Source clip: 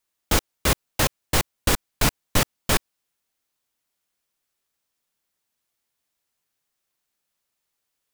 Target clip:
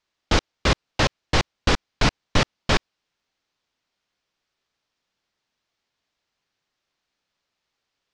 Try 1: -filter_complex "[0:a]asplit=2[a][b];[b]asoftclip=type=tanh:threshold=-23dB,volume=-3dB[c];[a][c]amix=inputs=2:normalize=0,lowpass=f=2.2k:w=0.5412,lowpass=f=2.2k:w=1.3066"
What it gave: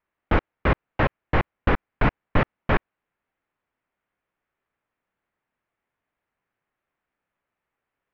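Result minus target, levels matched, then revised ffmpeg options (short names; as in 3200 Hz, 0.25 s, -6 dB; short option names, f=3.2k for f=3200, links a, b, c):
4000 Hz band -13.0 dB
-filter_complex "[0:a]asplit=2[a][b];[b]asoftclip=type=tanh:threshold=-23dB,volume=-3dB[c];[a][c]amix=inputs=2:normalize=0,lowpass=f=5.5k:w=0.5412,lowpass=f=5.5k:w=1.3066"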